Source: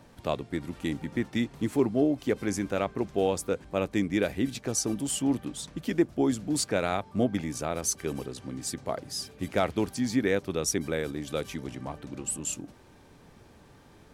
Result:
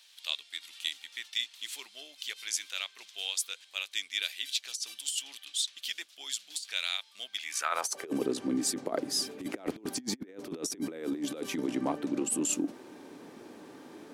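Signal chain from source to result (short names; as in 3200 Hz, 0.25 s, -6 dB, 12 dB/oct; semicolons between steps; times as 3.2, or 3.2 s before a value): high-pass sweep 3400 Hz -> 290 Hz, 7.39–8.18; negative-ratio compressor -32 dBFS, ratio -0.5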